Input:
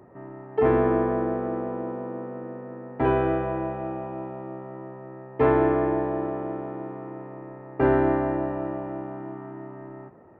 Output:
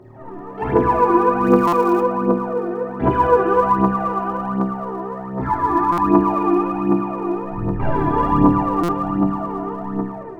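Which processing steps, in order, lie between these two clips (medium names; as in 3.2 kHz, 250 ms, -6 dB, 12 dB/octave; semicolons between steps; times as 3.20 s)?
7.49–8.09 s: octave divider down 1 oct, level 0 dB; flutter echo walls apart 4.5 m, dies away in 0.79 s; peak limiter -18.5 dBFS, peak gain reduction 11.5 dB; 5.28–6.03 s: static phaser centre 1.2 kHz, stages 4; reverberation RT60 2.5 s, pre-delay 6 ms, DRR -8.5 dB; level rider gain up to 4 dB; phaser 1.3 Hz, delay 3 ms, feedback 66%; 1.44–2.02 s: treble shelf 2.8 kHz +12 dB; buffer glitch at 1.67/5.92/8.83 s, samples 256, times 9; trim -4 dB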